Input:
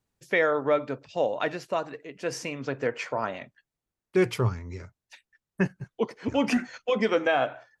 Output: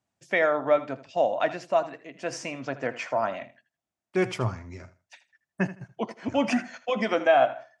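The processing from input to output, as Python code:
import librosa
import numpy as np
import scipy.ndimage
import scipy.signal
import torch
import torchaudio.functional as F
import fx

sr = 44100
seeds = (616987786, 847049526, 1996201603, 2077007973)

p1 = fx.cabinet(x, sr, low_hz=110.0, low_slope=12, high_hz=8900.0, hz=(150.0, 440.0, 670.0, 4100.0), db=(-3, -9, 9, -4))
y = p1 + fx.echo_feedback(p1, sr, ms=80, feedback_pct=21, wet_db=-15.5, dry=0)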